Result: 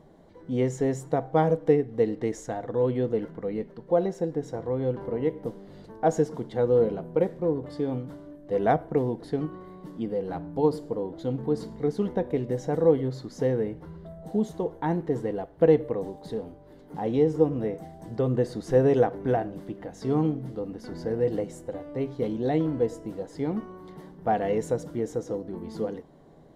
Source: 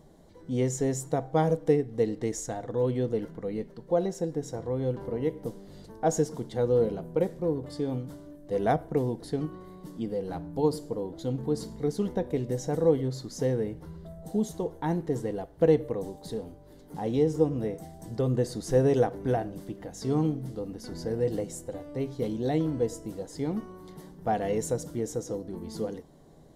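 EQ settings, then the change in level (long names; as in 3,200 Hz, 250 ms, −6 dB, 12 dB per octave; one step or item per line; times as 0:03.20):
bass and treble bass +2 dB, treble −13 dB
low-shelf EQ 160 Hz −9 dB
+3.5 dB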